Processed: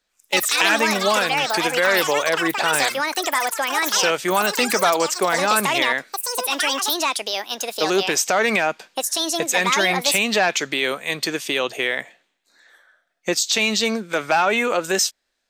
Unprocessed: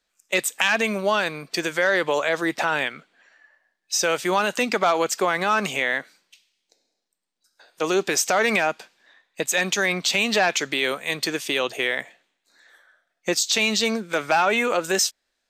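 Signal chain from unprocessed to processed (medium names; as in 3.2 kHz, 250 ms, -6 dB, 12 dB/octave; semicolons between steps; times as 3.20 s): ever faster or slower copies 111 ms, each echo +7 st, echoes 3; trim +1.5 dB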